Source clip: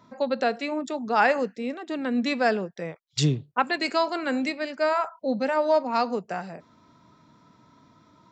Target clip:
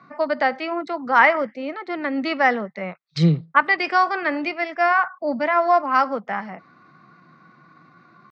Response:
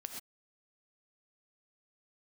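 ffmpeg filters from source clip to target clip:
-af "highpass=f=110:w=0.5412,highpass=f=110:w=1.3066,equalizer=f=140:t=q:w=4:g=5,equalizer=f=250:t=q:w=4:g=-4,equalizer=f=380:t=q:w=4:g=-4,equalizer=f=1.1k:t=q:w=4:g=8,equalizer=f=1.8k:t=q:w=4:g=7,equalizer=f=2.7k:t=q:w=4:g=-7,lowpass=f=3.7k:w=0.5412,lowpass=f=3.7k:w=1.3066,asetrate=49501,aresample=44100,atempo=0.890899,volume=3.5dB"

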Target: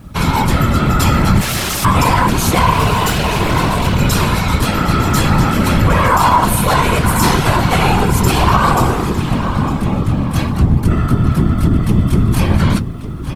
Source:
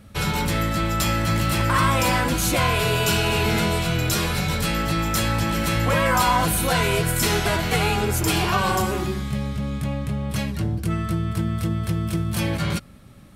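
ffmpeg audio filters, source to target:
-filter_complex "[0:a]equalizer=f=100:t=o:w=0.67:g=12,equalizer=f=250:t=o:w=0.67:g=5,equalizer=f=1k:t=o:w=0.67:g=9,asettb=1/sr,asplit=3[a][b][c];[a]atrim=end=1.414[d];[b]atrim=start=1.41:end=1.85,asetpts=PTS-STARTPTS,afade=t=in:d=0.004:c=qsin,afade=t=out:st=0.436:d=0.004:c=qsin,aeval=exprs='(mod(9.44*val(0)+1,2)-1)/9.44':c=same[e];[c]atrim=start=1.846[f];[d][e]acrossfade=d=0.004:c1=hsin:c2=qsin[g];[g][f]acrossfade=d=0.004:c1=qsin:c2=hsin,aresample=32000,aresample=44100,asettb=1/sr,asplit=3[h][i][j];[h]atrim=end=2.734[k];[i]atrim=start=2.73:end=4.01,asetpts=PTS-STARTPTS,afade=t=in:d=0.004:c=qsin,afade=t=out:st=1.276:d=0.004:c=qsin,asoftclip=type=hard:threshold=-17dB[l];[j]atrim=start=4.006[m];[k][l]acrossfade=d=0.004:c1=hsin:c2=qsin[n];[n][m]acrossfade=d=0.004:c1=qsin:c2=hsin,asplit=2[o][p];[p]adelay=905,lowpass=f=4.8k:p=1,volume=-10.5dB,asplit=2[q][r];[r]adelay=905,lowpass=f=4.8k:p=1,volume=0.39,asplit=2[s][t];[t]adelay=905,lowpass=f=4.8k:p=1,volume=0.39,asplit=2[u][v];[v]adelay=905,lowpass=f=4.8k:p=1,volume=0.39[w];[q][s][u][w]amix=inputs=4:normalize=0[x];[o][x]amix=inputs=2:normalize=0,acrusher=bits=9:mix=0:aa=0.000001,afftfilt=real='hypot(re,im)*cos(2*PI*random(0))':imag='hypot(re,im)*sin(2*PI*random(1))':win_size=512:overlap=0.75,alimiter=level_in=11.5dB:limit=-1dB:release=50:level=0:latency=1,volume=-1dB"

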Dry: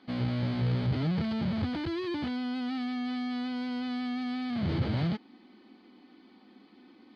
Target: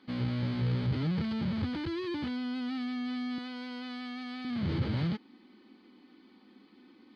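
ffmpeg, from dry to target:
-filter_complex "[0:a]asettb=1/sr,asplit=3[a][b][c];[a]atrim=end=3.384[d];[b]atrim=start=3.38:end=4.45,asetpts=PTS-STARTPTS,afade=t=in:d=0.004:c=qsin,afade=t=out:st=1.066:d=0.004:c=qsin,highpass=330[e];[c]atrim=start=4.446[f];[d][e]acrossfade=d=0.004:c1=hsin:c2=qsin[g];[g][f]acrossfade=d=0.004:c1=qsin:c2=hsin,equalizer=f=690:t=o:w=0.36:g=-8,volume=-1.5dB"

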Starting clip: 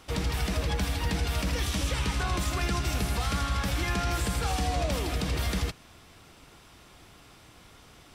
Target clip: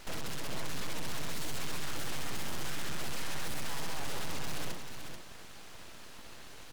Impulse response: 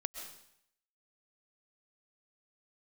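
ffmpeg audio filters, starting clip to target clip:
-filter_complex "[0:a]highshelf=f=9.7k:g=-11.5,bandreject=f=73.69:t=h:w=4,bandreject=f=147.38:t=h:w=4,bandreject=f=221.07:t=h:w=4,bandreject=f=294.76:t=h:w=4,bandreject=f=368.45:t=h:w=4,bandreject=f=442.14:t=h:w=4,bandreject=f=515.83:t=h:w=4,bandreject=f=589.52:t=h:w=4,bandreject=f=663.21:t=h:w=4,bandreject=f=736.9:t=h:w=4,bandreject=f=810.59:t=h:w=4,aeval=exprs='abs(val(0))':c=same,acrusher=bits=4:mode=log:mix=0:aa=0.000001,asoftclip=type=tanh:threshold=-35dB,asetrate=53361,aresample=44100,asplit=2[a][b];[b]aecho=0:1:436:0.422[c];[a][c]amix=inputs=2:normalize=0,volume=5dB"

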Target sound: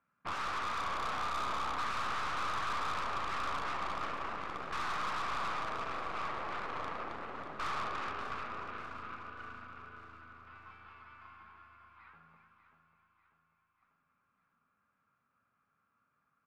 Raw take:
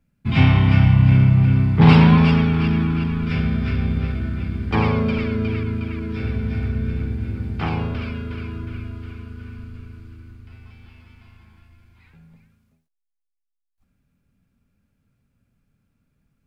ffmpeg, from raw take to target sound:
-filter_complex "[0:a]alimiter=limit=-11.5dB:level=0:latency=1:release=34,aeval=exprs='0.266*sin(PI/2*7.08*val(0)/0.266)':c=same,bandpass=f=1.2k:t=q:w=5.3:csg=0,aeval=exprs='(tanh(25.1*val(0)+0.65)-tanh(0.65))/25.1':c=same,asplit=2[a][b];[b]aecho=0:1:592|1184|1776|2368|2960|3552:0.282|0.147|0.0762|0.0396|0.0206|0.0107[c];[a][c]amix=inputs=2:normalize=0,volume=-5.5dB"

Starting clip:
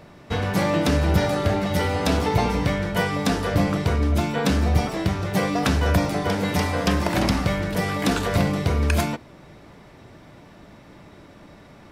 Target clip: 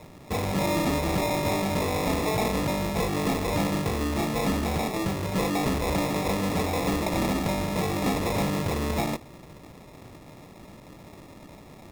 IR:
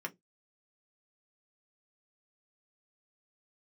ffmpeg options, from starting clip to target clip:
-filter_complex "[0:a]acrossover=split=150[a][b];[a]acompressor=threshold=-32dB:ratio=6[c];[c][b]amix=inputs=2:normalize=0,acrusher=samples=29:mix=1:aa=0.000001,asoftclip=type=tanh:threshold=-20dB"

